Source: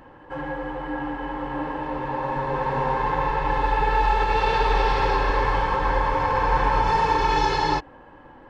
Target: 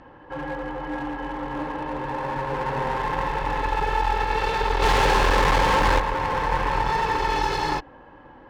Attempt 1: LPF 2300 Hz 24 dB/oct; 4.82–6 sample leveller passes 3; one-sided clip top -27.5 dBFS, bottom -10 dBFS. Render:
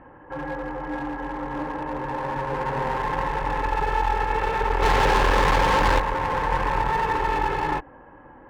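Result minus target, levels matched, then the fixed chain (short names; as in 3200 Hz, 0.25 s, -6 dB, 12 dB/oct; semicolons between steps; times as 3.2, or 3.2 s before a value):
8000 Hz band -2.5 dB
LPF 6700 Hz 24 dB/oct; 4.82–6 sample leveller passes 3; one-sided clip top -27.5 dBFS, bottom -10 dBFS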